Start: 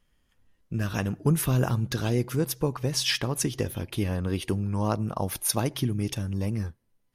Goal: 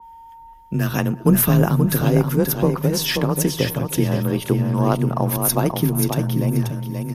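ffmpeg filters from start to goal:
-filter_complex "[0:a]equalizer=f=13000:w=2.1:g=13.5,aeval=exprs='0.562*(cos(1*acos(clip(val(0)/0.562,-1,1)))-cos(1*PI/2))+0.0224*(cos(2*acos(clip(val(0)/0.562,-1,1)))-cos(2*PI/2))+0.0251*(cos(4*acos(clip(val(0)/0.562,-1,1)))-cos(4*PI/2))':c=same,asplit=2[s0][s1];[s1]adelay=355.7,volume=0.1,highshelf=f=4000:g=-8[s2];[s0][s2]amix=inputs=2:normalize=0,aeval=exprs='val(0)+0.00447*sin(2*PI*890*n/s)':c=same,asplit=2[s3][s4];[s4]aecho=0:1:532|1064|1596:0.501|0.1|0.02[s5];[s3][s5]amix=inputs=2:normalize=0,afreqshift=26,adynamicequalizer=threshold=0.00562:dfrequency=1900:dqfactor=0.7:tfrequency=1900:tqfactor=0.7:attack=5:release=100:ratio=0.375:range=3:mode=cutabove:tftype=highshelf,volume=2.37"

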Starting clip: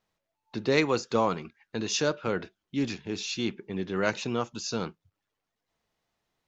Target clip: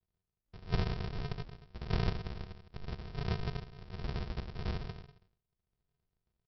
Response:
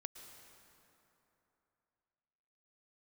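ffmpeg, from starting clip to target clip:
-filter_complex "[0:a]aderivative,aecho=1:1:78|156|234|312|390|468:0.631|0.29|0.134|0.0614|0.0283|0.013[s0];[1:a]atrim=start_sample=2205,afade=t=out:st=0.24:d=0.01,atrim=end_sample=11025[s1];[s0][s1]afir=irnorm=-1:irlink=0,aresample=11025,acrusher=samples=39:mix=1:aa=0.000001,aresample=44100,crystalizer=i=1:c=0,volume=3.98"

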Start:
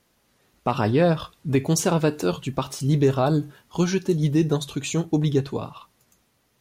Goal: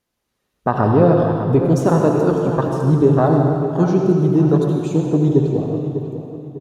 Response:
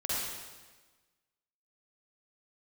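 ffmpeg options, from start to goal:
-filter_complex "[0:a]afwtdn=0.0355,asplit=2[s0][s1];[s1]adelay=599,lowpass=f=3100:p=1,volume=0.299,asplit=2[s2][s3];[s3]adelay=599,lowpass=f=3100:p=1,volume=0.36,asplit=2[s4][s5];[s5]adelay=599,lowpass=f=3100:p=1,volume=0.36,asplit=2[s6][s7];[s7]adelay=599,lowpass=f=3100:p=1,volume=0.36[s8];[s0][s2][s4][s6][s8]amix=inputs=5:normalize=0,asplit=2[s9][s10];[1:a]atrim=start_sample=2205,asetrate=28665,aresample=44100[s11];[s10][s11]afir=irnorm=-1:irlink=0,volume=0.376[s12];[s9][s12]amix=inputs=2:normalize=0,volume=1.33"

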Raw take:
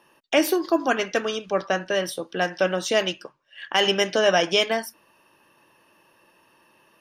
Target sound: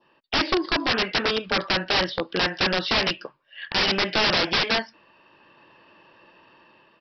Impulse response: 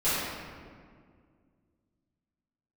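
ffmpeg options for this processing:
-af "adynamicequalizer=threshold=0.02:dfrequency=2100:dqfactor=1.5:tfrequency=2100:tqfactor=1.5:attack=5:release=100:ratio=0.375:range=1.5:mode=boostabove:tftype=bell,dynaudnorm=f=240:g=5:m=2.37,aresample=11025,aeval=exprs='(mod(4.73*val(0)+1,2)-1)/4.73':c=same,aresample=44100,volume=0.794"

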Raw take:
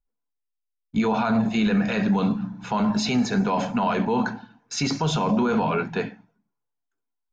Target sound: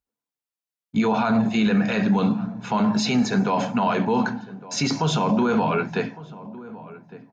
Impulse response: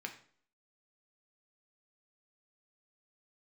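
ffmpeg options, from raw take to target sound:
-filter_complex "[0:a]highpass=72,asplit=2[s0][s1];[s1]adelay=1158,lowpass=f=1200:p=1,volume=0.141,asplit=2[s2][s3];[s3]adelay=1158,lowpass=f=1200:p=1,volume=0.35,asplit=2[s4][s5];[s5]adelay=1158,lowpass=f=1200:p=1,volume=0.35[s6];[s0][s2][s4][s6]amix=inputs=4:normalize=0,volume=1.19"

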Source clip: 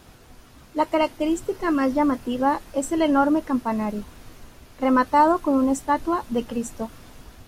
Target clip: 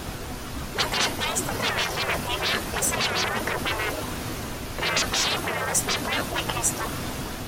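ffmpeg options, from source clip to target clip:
-af "aeval=exprs='0.447*sin(PI/2*3.98*val(0)/0.447)':c=same,afftfilt=real='re*lt(hypot(re,im),0.355)':imag='im*lt(hypot(re,im),0.355)':win_size=1024:overlap=0.75"

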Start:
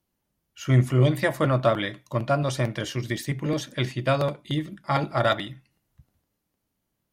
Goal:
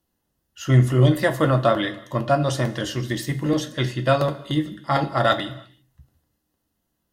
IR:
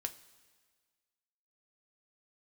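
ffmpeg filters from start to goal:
-filter_complex "[0:a]asuperstop=centerf=2300:order=4:qfactor=7.4[s0];[1:a]atrim=start_sample=2205,afade=t=out:st=0.4:d=0.01,atrim=end_sample=18081[s1];[s0][s1]afir=irnorm=-1:irlink=0,volume=1.68"

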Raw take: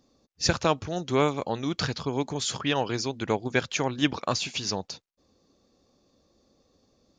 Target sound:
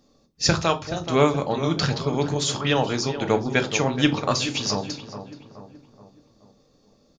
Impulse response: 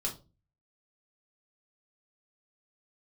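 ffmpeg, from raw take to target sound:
-filter_complex "[0:a]asettb=1/sr,asplit=3[s0][s1][s2];[s0]atrim=end=0.554[s3];[s1]atrim=start=0.55:end=1.07,asetpts=PTS-STARTPTS,afade=t=in:d=0.004:c=qsin,afade=t=out:st=0.516:d=0.004:c=qsin,lowshelf=f=390:g=-9.5[s4];[s2]atrim=start=1.066[s5];[s3][s4]acrossfade=d=0.004:c1=hsin:c2=qsin[s6];[s6][s5]acrossfade=d=0.004:c1=qsin:c2=hsin,asplit=2[s7][s8];[s8]adelay=426,lowpass=f=1600:p=1,volume=0.316,asplit=2[s9][s10];[s10]adelay=426,lowpass=f=1600:p=1,volume=0.5,asplit=2[s11][s12];[s12]adelay=426,lowpass=f=1600:p=1,volume=0.5,asplit=2[s13][s14];[s14]adelay=426,lowpass=f=1600:p=1,volume=0.5,asplit=2[s15][s16];[s16]adelay=426,lowpass=f=1600:p=1,volume=0.5[s17];[s7][s9][s11][s13][s15][s17]amix=inputs=6:normalize=0,asplit=2[s18][s19];[1:a]atrim=start_sample=2205[s20];[s19][s20]afir=irnorm=-1:irlink=0,volume=0.668[s21];[s18][s21]amix=inputs=2:normalize=0"

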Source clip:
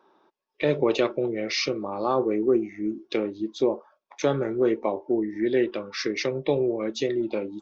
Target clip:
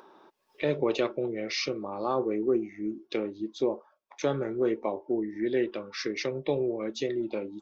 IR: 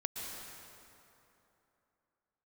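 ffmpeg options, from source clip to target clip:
-af "acompressor=mode=upward:threshold=0.01:ratio=2.5,volume=0.596"

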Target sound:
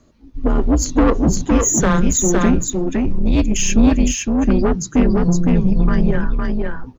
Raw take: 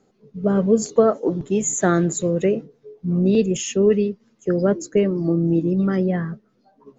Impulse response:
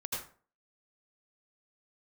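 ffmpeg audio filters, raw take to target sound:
-af "afreqshift=-160,asoftclip=type=tanh:threshold=0.126,aecho=1:1:511:0.708,volume=2.51"

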